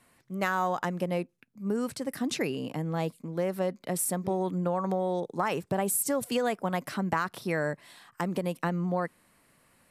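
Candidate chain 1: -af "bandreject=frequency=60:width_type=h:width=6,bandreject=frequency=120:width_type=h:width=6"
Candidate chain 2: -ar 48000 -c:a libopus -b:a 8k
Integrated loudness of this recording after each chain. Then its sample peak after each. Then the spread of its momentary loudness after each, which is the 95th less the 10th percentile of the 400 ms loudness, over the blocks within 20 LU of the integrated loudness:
−30.5, −32.0 LKFS; −14.5, −14.0 dBFS; 6, 5 LU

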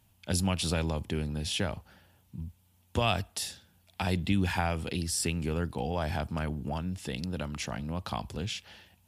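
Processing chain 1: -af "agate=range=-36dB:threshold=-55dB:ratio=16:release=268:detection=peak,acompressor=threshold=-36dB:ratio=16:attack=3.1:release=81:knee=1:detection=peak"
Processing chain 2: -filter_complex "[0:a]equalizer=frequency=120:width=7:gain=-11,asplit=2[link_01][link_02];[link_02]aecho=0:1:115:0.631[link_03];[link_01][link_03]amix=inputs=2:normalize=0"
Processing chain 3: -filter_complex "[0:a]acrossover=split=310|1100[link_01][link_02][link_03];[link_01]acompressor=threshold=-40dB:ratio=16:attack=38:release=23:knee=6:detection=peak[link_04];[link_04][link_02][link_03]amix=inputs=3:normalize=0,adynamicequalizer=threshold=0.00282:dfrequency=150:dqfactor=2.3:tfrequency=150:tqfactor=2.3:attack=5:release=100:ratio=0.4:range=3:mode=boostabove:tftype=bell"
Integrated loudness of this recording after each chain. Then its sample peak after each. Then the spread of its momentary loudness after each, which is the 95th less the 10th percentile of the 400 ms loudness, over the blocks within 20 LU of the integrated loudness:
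−41.5, −31.5, −33.0 LKFS; −18.5, −10.5, −15.0 dBFS; 7, 14, 12 LU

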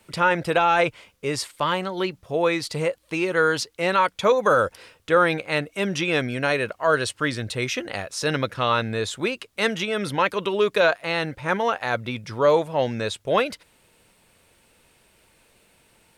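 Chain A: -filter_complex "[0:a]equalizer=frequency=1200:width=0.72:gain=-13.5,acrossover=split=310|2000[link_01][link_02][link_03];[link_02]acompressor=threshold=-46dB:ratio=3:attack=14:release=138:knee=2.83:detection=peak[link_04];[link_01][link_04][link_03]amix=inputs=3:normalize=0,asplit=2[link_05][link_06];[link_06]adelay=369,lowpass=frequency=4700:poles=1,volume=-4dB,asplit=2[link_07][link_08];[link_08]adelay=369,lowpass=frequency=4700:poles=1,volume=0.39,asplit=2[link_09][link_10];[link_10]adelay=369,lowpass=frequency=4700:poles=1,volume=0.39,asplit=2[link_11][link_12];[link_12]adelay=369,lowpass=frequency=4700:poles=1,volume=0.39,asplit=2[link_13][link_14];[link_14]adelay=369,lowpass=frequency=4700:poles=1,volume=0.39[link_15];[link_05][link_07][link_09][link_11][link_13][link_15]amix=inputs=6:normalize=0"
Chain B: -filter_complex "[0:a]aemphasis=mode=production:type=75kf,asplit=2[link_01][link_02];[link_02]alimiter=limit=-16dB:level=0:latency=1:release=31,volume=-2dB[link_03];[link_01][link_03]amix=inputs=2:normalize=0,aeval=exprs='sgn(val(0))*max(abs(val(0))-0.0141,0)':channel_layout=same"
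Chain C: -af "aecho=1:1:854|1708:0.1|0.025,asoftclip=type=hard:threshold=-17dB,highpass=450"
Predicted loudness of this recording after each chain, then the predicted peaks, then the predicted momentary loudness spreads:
−31.5, −19.0, −26.0 LKFS; −15.0, −3.5, −11.0 dBFS; 4, 6, 7 LU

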